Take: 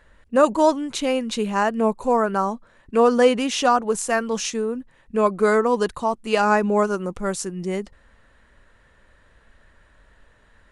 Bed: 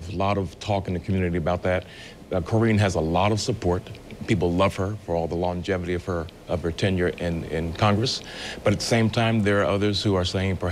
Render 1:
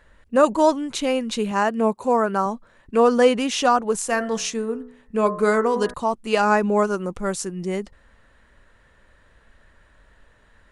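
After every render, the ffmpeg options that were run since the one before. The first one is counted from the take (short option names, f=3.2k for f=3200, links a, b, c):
-filter_complex "[0:a]asettb=1/sr,asplit=3[a][b][c];[a]atrim=end=1.514[d];[b]atrim=start=1.51:end=2.46,asetpts=PTS-STARTPTS,afade=t=in:d=0.004:c=qsin,afade=t=out:st=0.946:d=0.004:c=qsin,highpass=91[e];[c]atrim=start=2.456[f];[d][e]acrossfade=d=0.004:c1=hsin:c2=qsin[g];[g][f]acrossfade=d=0.004:c1=qsin:c2=hsin,asettb=1/sr,asplit=3[h][i][j];[h]atrim=end=4.084[k];[i]atrim=start=4.08:end=5.94,asetpts=PTS-STARTPTS,afade=t=in:d=0.004:c=qsin,afade=t=out:st=1.856:d=0.004:c=qsin,bandreject=f=61.73:t=h:w=4,bandreject=f=123.46:t=h:w=4,bandreject=f=185.19:t=h:w=4,bandreject=f=246.92:t=h:w=4,bandreject=f=308.65:t=h:w=4,bandreject=f=370.38:t=h:w=4,bandreject=f=432.11:t=h:w=4,bandreject=f=493.84:t=h:w=4,bandreject=f=555.57:t=h:w=4,bandreject=f=617.3:t=h:w=4,bandreject=f=679.03:t=h:w=4,bandreject=f=740.76:t=h:w=4,bandreject=f=802.49:t=h:w=4,bandreject=f=864.22:t=h:w=4,bandreject=f=925.95:t=h:w=4,bandreject=f=987.68:t=h:w=4,bandreject=f=1.04941k:t=h:w=4,bandreject=f=1.11114k:t=h:w=4,bandreject=f=1.17287k:t=h:w=4,bandreject=f=1.2346k:t=h:w=4,bandreject=f=1.29633k:t=h:w=4,bandreject=f=1.35806k:t=h:w=4,bandreject=f=1.41979k:t=h:w=4,bandreject=f=1.48152k:t=h:w=4,bandreject=f=1.54325k:t=h:w=4,bandreject=f=1.60498k:t=h:w=4,bandreject=f=1.66671k:t=h:w=4,bandreject=f=1.72844k:t=h:w=4,bandreject=f=1.79017k:t=h:w=4,bandreject=f=1.8519k:t=h:w=4,bandreject=f=1.91363k:t=h:w=4,bandreject=f=1.97536k:t=h:w=4,bandreject=f=2.03709k:t=h:w=4,bandreject=f=2.09882k:t=h:w=4[l];[j]atrim=start=5.936[m];[k][l]acrossfade=d=0.004:c1=hsin:c2=qsin[n];[n][m]acrossfade=d=0.004:c1=qsin:c2=hsin"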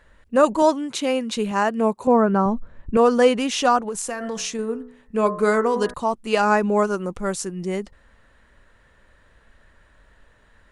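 -filter_complex "[0:a]asettb=1/sr,asplit=3[a][b][c];[a]atrim=end=0.624[d];[b]atrim=start=0.62:end=1.37,asetpts=PTS-STARTPTS,afade=t=in:d=0.004:c=qsin,afade=t=out:st=0.746:d=0.004:c=qsin,highpass=120[e];[c]atrim=start=1.366[f];[d][e]acrossfade=d=0.004:c1=hsin:c2=qsin[g];[g][f]acrossfade=d=0.004:c1=qsin:c2=hsin,asettb=1/sr,asplit=3[h][i][j];[h]atrim=end=2.074[k];[i]atrim=start=2.07:end=2.97,asetpts=PTS-STARTPTS,afade=t=in:d=0.004:c=qsin,afade=t=out:st=0.896:d=0.004:c=qsin,aemphasis=mode=reproduction:type=riaa[l];[j]atrim=start=2.966[m];[k][l]acrossfade=d=0.004:c1=hsin:c2=qsin[n];[n][m]acrossfade=d=0.004:c1=qsin:c2=hsin,asettb=1/sr,asplit=3[o][p][q];[o]atrim=end=3.884[r];[p]atrim=start=3.88:end=4.59,asetpts=PTS-STARTPTS,afade=t=in:d=0.004:c=qsin,afade=t=out:st=0.706:d=0.004:c=qsin,acompressor=threshold=-23dB:ratio=12:attack=3.2:release=140:knee=1:detection=peak[s];[q]atrim=start=4.586[t];[r][s]acrossfade=d=0.004:c1=hsin:c2=qsin[u];[u][t]acrossfade=d=0.004:c1=qsin:c2=hsin"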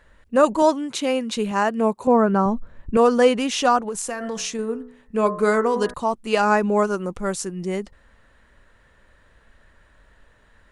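-filter_complex "[0:a]asettb=1/sr,asplit=3[a][b][c];[a]atrim=end=2.194[d];[b]atrim=start=2.19:end=3.07,asetpts=PTS-STARTPTS,afade=t=in:d=0.004:c=qsin,afade=t=out:st=0.876:d=0.004:c=qsin,highshelf=f=4.7k:g=4.5[e];[c]atrim=start=3.066[f];[d][e]acrossfade=d=0.004:c1=hsin:c2=qsin[g];[g][f]acrossfade=d=0.004:c1=qsin:c2=hsin"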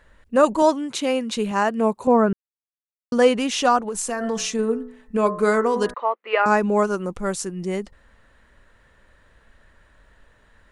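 -filter_complex "[0:a]asettb=1/sr,asplit=3[a][b][c];[a]atrim=end=3.954[d];[b]atrim=start=3.95:end=5.17,asetpts=PTS-STARTPTS,afade=t=in:d=0.004:c=qsin,afade=t=out:st=1.216:d=0.004:c=qsin,aecho=1:1:4.6:0.65,atrim=end_sample=53802[e];[c]atrim=start=5.166[f];[d][e]acrossfade=d=0.004:c1=hsin:c2=qsin[g];[g][f]acrossfade=d=0.004:c1=qsin:c2=hsin,asettb=1/sr,asplit=3[h][i][j];[h]atrim=end=5.944[k];[i]atrim=start=5.94:end=6.46,asetpts=PTS-STARTPTS,afade=t=in:d=0.004:c=qsin,afade=t=out:st=0.516:d=0.004:c=qsin,highpass=f=470:w=0.5412,highpass=f=470:w=1.3066,equalizer=f=500:t=q:w=4:g=5,equalizer=f=750:t=q:w=4:g=-3,equalizer=f=1.2k:t=q:w=4:g=4,equalizer=f=2k:t=q:w=4:g=8,lowpass=f=2.8k:w=0.5412,lowpass=f=2.8k:w=1.3066[l];[j]atrim=start=6.456[m];[k][l]acrossfade=d=0.004:c1=hsin:c2=qsin[n];[n][m]acrossfade=d=0.004:c1=qsin:c2=hsin,asplit=3[o][p][q];[o]atrim=end=2.33,asetpts=PTS-STARTPTS,afade=t=out:st=2.326:d=0.004:c=hsin[r];[p]atrim=start=2.33:end=3.12,asetpts=PTS-STARTPTS,volume=0[s];[q]atrim=start=3.12,asetpts=PTS-STARTPTS,afade=t=in:d=0.004:c=hsin[t];[r][s][t]concat=n=3:v=0:a=1"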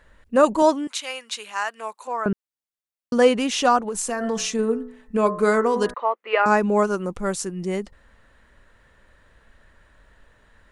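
-filter_complex "[0:a]asettb=1/sr,asplit=3[a][b][c];[a]atrim=end=0.874[d];[b]atrim=start=0.87:end=2.26,asetpts=PTS-STARTPTS,afade=t=in:d=0.004:c=qsin,afade=t=out:st=1.386:d=0.004:c=qsin,highpass=1.2k[e];[c]atrim=start=2.256[f];[d][e]acrossfade=d=0.004:c1=hsin:c2=qsin[g];[g][f]acrossfade=d=0.004:c1=qsin:c2=hsin"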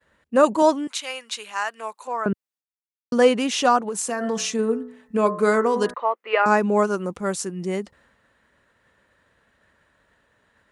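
-af "highpass=110,agate=range=-33dB:threshold=-54dB:ratio=3:detection=peak"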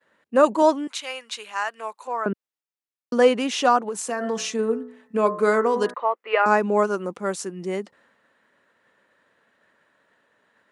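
-af "highpass=220,highshelf=f=5k:g=-5.5"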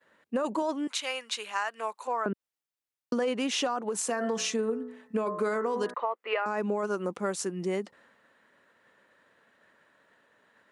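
-af "alimiter=limit=-14dB:level=0:latency=1:release=14,acompressor=threshold=-26dB:ratio=6"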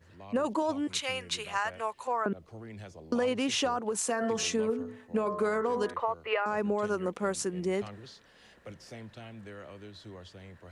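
-filter_complex "[1:a]volume=-25dB[a];[0:a][a]amix=inputs=2:normalize=0"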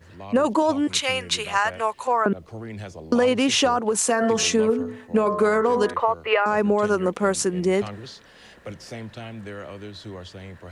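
-af "volume=9.5dB"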